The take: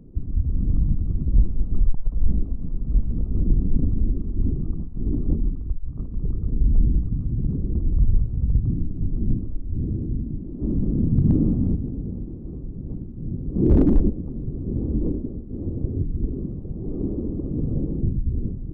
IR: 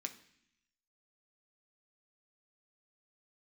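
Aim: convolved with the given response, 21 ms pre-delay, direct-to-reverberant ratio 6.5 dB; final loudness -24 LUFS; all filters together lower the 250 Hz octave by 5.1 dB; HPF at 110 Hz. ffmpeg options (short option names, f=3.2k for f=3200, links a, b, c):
-filter_complex "[0:a]highpass=110,equalizer=f=250:t=o:g=-6.5,asplit=2[a][b];[1:a]atrim=start_sample=2205,adelay=21[c];[b][c]afir=irnorm=-1:irlink=0,volume=-4.5dB[d];[a][d]amix=inputs=2:normalize=0,volume=7.5dB"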